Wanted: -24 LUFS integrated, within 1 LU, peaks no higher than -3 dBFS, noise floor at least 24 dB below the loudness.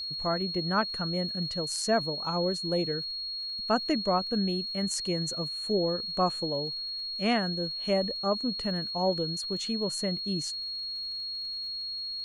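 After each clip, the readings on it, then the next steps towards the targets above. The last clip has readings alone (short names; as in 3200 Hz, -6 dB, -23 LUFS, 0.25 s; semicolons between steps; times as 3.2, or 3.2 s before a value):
ticks 48/s; steady tone 4300 Hz; tone level -33 dBFS; loudness -29.5 LUFS; peak -13.5 dBFS; loudness target -24.0 LUFS
-> de-click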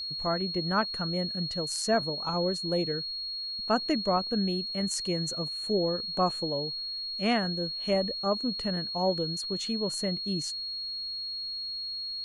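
ticks 0/s; steady tone 4300 Hz; tone level -33 dBFS
-> notch 4300 Hz, Q 30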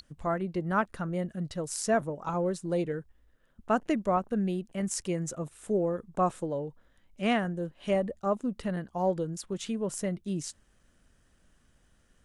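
steady tone none; loudness -31.5 LUFS; peak -14.5 dBFS; loudness target -24.0 LUFS
-> gain +7.5 dB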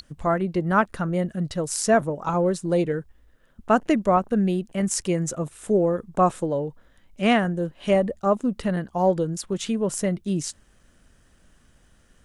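loudness -24.0 LUFS; peak -7.0 dBFS; noise floor -59 dBFS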